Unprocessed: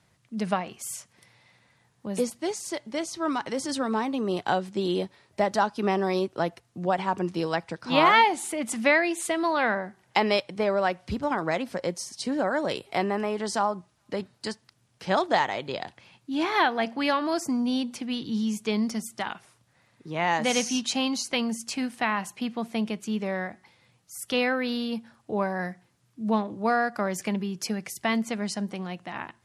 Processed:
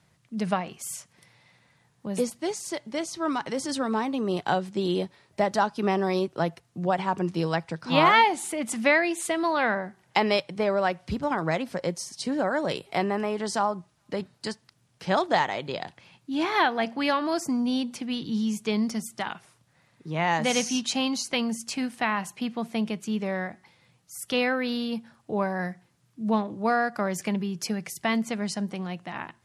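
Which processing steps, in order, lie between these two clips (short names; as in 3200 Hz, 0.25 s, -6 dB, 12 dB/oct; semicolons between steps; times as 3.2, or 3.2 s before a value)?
bell 160 Hz +7 dB 0.23 oct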